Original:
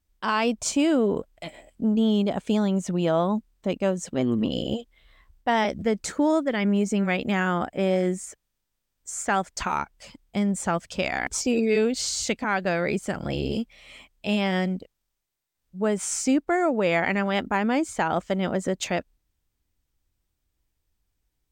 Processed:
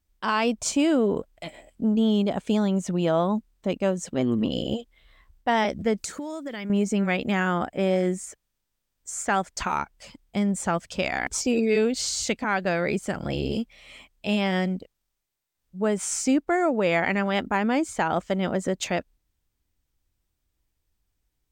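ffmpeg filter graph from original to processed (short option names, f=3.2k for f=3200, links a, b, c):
-filter_complex "[0:a]asettb=1/sr,asplit=3[a][b][c];[a]atrim=end=5.984[d];[b]atrim=start=5.98:end=6.7,asetpts=PTS-STARTPTS,afade=t=in:d=0.004:c=qsin,afade=t=out:st=0.716:d=0.004:c=qsin,highshelf=f=3.7k:g=11,acompressor=threshold=-29dB:ratio=12:attack=3.2:release=140:knee=1:detection=peak[e];[c]atrim=start=6.696[f];[d][e]acrossfade=d=0.004:c1=hsin:c2=qsin[g];[g][f]acrossfade=d=0.004:c1=qsin:c2=hsin"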